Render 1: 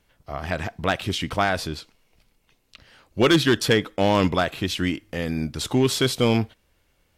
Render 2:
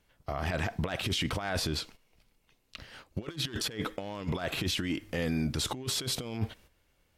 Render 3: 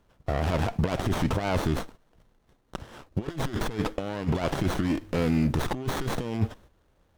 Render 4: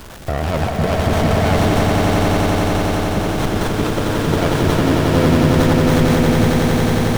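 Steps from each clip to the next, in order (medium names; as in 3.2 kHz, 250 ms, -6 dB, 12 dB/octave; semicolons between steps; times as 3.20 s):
gate -52 dBFS, range -10 dB; compressor with a negative ratio -27 dBFS, ratio -0.5; peak limiter -22 dBFS, peak gain reduction 11.5 dB
sliding maximum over 17 samples; trim +6.5 dB
jump at every zero crossing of -36.5 dBFS; echo with a slow build-up 90 ms, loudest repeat 8, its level -5 dB; crackle 250 per s -31 dBFS; trim +5.5 dB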